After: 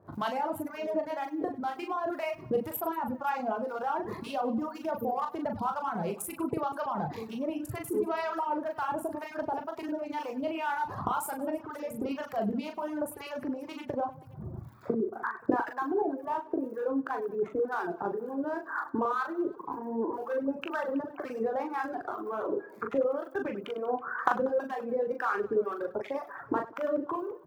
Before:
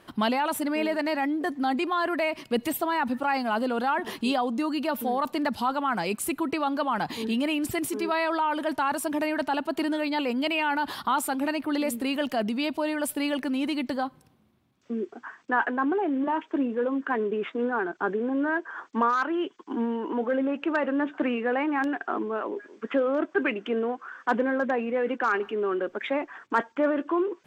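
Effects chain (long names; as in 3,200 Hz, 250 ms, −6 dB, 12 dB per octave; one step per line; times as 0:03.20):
adaptive Wiener filter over 15 samples
camcorder AGC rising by 70 dB per second
high-pass filter 61 Hz
surface crackle 75 per second −43 dBFS
octave-band graphic EQ 125/250/2,000/4,000/8,000 Hz +7/−10/−7/−8/−8 dB
two-band tremolo in antiphase 2 Hz, depth 70%, crossover 820 Hz
double-tracking delay 19 ms −12.5 dB
reverse bouncing-ball delay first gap 40 ms, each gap 1.5×, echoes 5
reverb reduction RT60 1.4 s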